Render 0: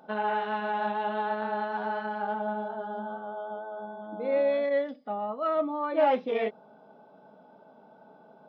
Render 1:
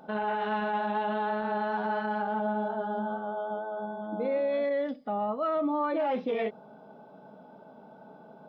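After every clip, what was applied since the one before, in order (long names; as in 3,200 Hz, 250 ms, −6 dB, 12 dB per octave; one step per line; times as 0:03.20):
low-shelf EQ 180 Hz +8.5 dB
brickwall limiter −24.5 dBFS, peak gain reduction 12 dB
level +2.5 dB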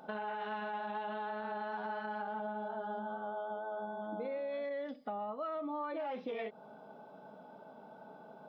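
low-shelf EQ 430 Hz −6.5 dB
downward compressor 5 to 1, threshold −37 dBFS, peak gain reduction 9 dB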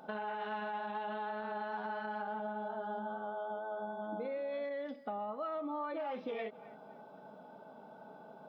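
feedback echo with a band-pass in the loop 263 ms, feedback 40%, band-pass 1,100 Hz, level −16 dB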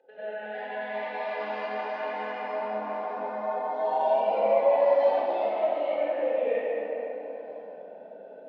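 formant filter e
delay with pitch and tempo change per echo 376 ms, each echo +3 semitones, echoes 3
convolution reverb RT60 3.4 s, pre-delay 89 ms, DRR −16 dB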